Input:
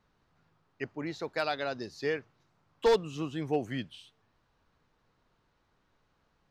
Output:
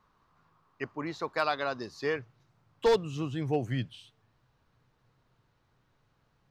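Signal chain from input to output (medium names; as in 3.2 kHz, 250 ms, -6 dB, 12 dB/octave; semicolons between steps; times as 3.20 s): peaking EQ 1.1 kHz +12 dB 0.46 oct, from 2.16 s 120 Hz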